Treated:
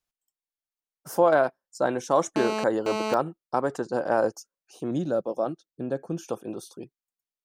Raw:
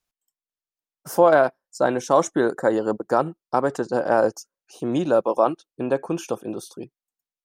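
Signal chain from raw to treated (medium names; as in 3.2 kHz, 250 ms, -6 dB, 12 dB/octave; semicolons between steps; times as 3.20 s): 2.36–3.14 s: mobile phone buzz -24 dBFS; 4.91–6.27 s: fifteen-band graphic EQ 160 Hz +4 dB, 400 Hz -3 dB, 1 kHz -12 dB, 2.5 kHz -11 dB, 10 kHz -7 dB; trim -4.5 dB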